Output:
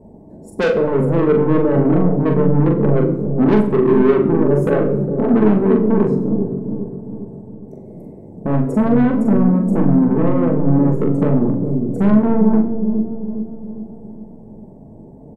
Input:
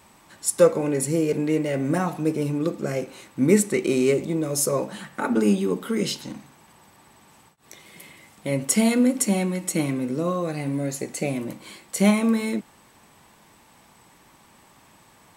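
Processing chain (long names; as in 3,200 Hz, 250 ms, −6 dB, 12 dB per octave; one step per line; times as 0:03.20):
inverse Chebyshev low-pass filter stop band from 1,200 Hz, stop band 40 dB
in parallel at +2 dB: downward compressor, threshold −30 dBFS, peak gain reduction 17 dB
on the sum: soft clipping −22 dBFS, distortion −8 dB
double-tracking delay 42 ms −5 dB
delay with a low-pass on its return 406 ms, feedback 50%, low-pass 420 Hz, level −4 dB
rectangular room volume 2,300 cubic metres, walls furnished, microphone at 1.5 metres
level +8 dB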